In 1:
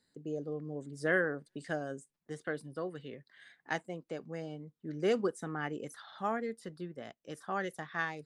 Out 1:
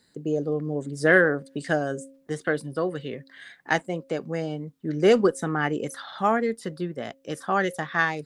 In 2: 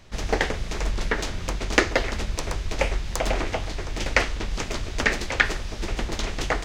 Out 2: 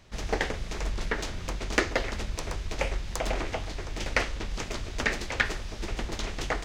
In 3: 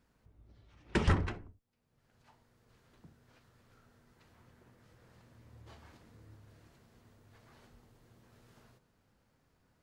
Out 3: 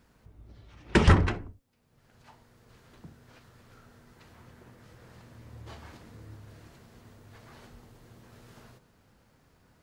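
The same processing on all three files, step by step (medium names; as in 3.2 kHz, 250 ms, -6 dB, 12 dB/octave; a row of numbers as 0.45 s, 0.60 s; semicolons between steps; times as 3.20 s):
single-diode clipper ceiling -7 dBFS; de-hum 270.7 Hz, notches 2; peak normalisation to -6 dBFS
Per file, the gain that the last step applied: +12.0 dB, -4.5 dB, +9.5 dB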